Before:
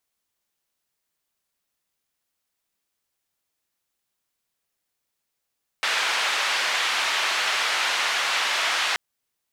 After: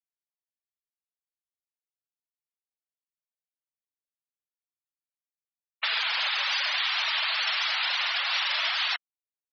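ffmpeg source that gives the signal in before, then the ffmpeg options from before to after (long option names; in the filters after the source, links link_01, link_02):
-f lavfi -i "anoisesrc=color=white:duration=3.13:sample_rate=44100:seed=1,highpass=frequency=900,lowpass=frequency=3100,volume=-9.6dB"
-filter_complex "[0:a]afftfilt=real='re*gte(hypot(re,im),0.0708)':imag='im*gte(hypot(re,im),0.0708)':win_size=1024:overlap=0.75,highshelf=frequency=4900:gain=7,acrossover=split=180|3000[link_01][link_02][link_03];[link_02]acompressor=threshold=-30dB:ratio=6[link_04];[link_01][link_04][link_03]amix=inputs=3:normalize=0"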